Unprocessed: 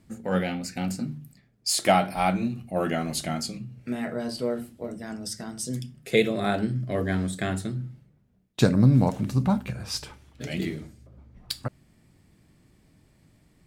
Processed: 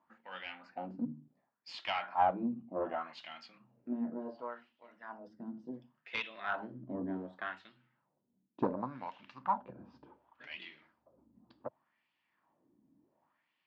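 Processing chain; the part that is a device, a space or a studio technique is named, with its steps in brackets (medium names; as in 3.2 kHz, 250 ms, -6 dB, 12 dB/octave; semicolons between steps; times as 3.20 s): wah-wah guitar rig (wah-wah 0.68 Hz 250–2800 Hz, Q 2.5; valve stage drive 20 dB, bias 0.45; cabinet simulation 91–4200 Hz, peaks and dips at 110 Hz -10 dB, 170 Hz -5 dB, 420 Hz -7 dB, 970 Hz +10 dB, 2.2 kHz -6 dB, 3.9 kHz -5 dB)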